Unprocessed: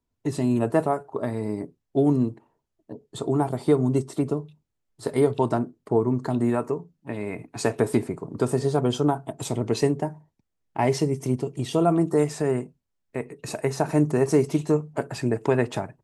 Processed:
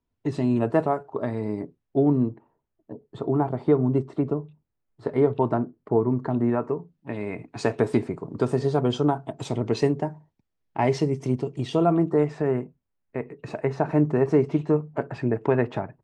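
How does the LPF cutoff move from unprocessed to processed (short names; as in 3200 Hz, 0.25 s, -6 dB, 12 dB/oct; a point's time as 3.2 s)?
1.58 s 4000 Hz
2.1 s 2000 Hz
6.61 s 2000 Hz
7.11 s 4700 Hz
11.71 s 4700 Hz
12.17 s 2300 Hz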